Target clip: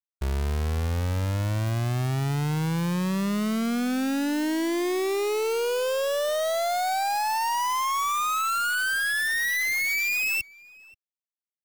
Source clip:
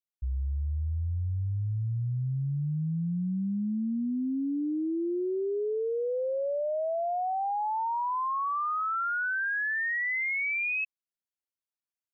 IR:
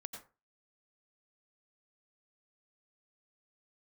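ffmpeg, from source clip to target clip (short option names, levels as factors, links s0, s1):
-filter_complex "[0:a]acrusher=bits=6:dc=4:mix=0:aa=0.000001,asetrate=45938,aresample=44100,asplit=2[s0][s1];[s1]adelay=530.6,volume=0.0891,highshelf=f=4000:g=-11.9[s2];[s0][s2]amix=inputs=2:normalize=0,volume=1.33"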